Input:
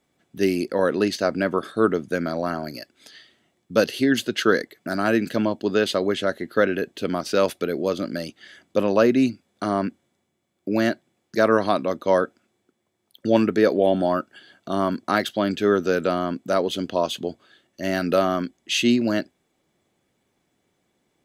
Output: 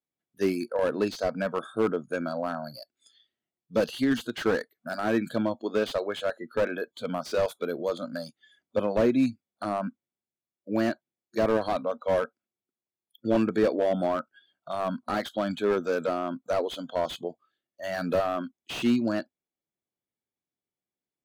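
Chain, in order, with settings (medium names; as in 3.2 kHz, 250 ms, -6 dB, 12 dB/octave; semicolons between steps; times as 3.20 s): spectral noise reduction 22 dB; slew-rate limiter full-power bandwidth 100 Hz; trim -4 dB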